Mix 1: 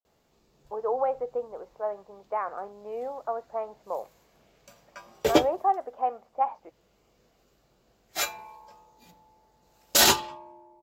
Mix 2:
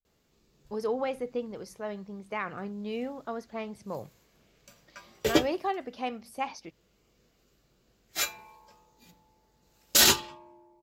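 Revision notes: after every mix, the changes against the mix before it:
speech: remove Butterworth band-pass 760 Hz, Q 0.84; master: add bell 760 Hz -8.5 dB 1.2 oct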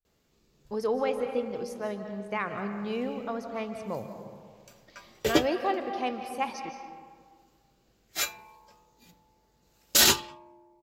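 reverb: on, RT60 1.8 s

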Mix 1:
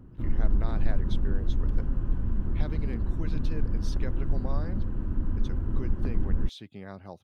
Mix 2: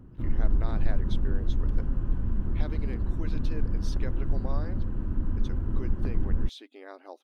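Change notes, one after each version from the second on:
speech: add brick-wall FIR high-pass 250 Hz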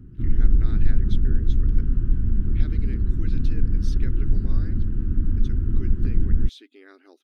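background: add low shelf 280 Hz +7 dB; master: add band shelf 740 Hz -14 dB 1.3 oct

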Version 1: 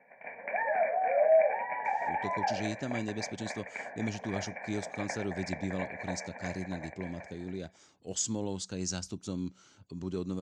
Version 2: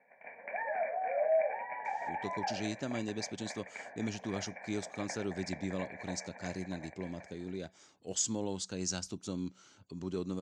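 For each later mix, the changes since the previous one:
background -5.5 dB; master: add low shelf 140 Hz -7 dB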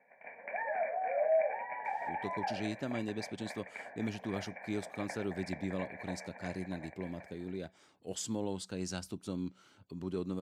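speech: remove synth low-pass 6600 Hz, resonance Q 3.5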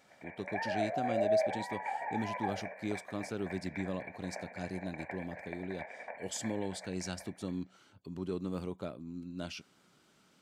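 speech: entry -1.85 s

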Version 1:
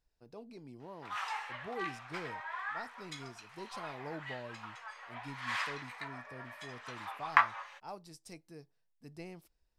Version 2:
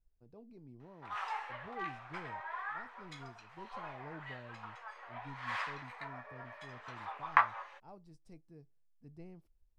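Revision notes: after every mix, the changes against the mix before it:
speech -11.0 dB; master: add tilt -3.5 dB/oct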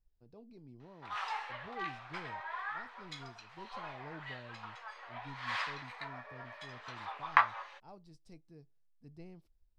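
master: add bell 4200 Hz +8 dB 1.2 oct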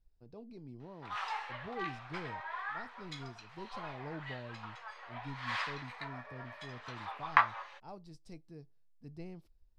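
speech +5.0 dB

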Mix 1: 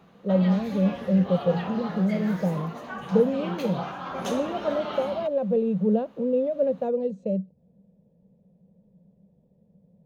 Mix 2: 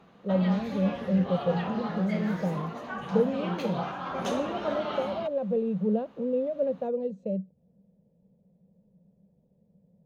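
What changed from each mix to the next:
speech -4.0 dB; master: add high shelf 8900 Hz -9.5 dB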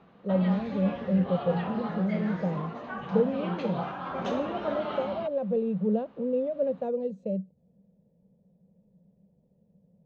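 background: add air absorption 170 m

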